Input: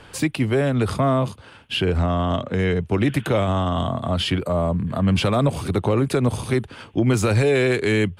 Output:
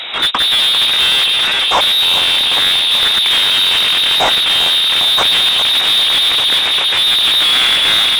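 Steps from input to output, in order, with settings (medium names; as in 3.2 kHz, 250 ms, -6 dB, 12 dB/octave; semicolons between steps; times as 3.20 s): square wave that keeps the level; on a send: echo whose repeats swap between lows and highs 200 ms, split 1.1 kHz, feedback 83%, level -6 dB; on the sum: frequency inversion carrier 3.8 kHz; overdrive pedal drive 27 dB, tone 2.1 kHz, clips at -1 dBFS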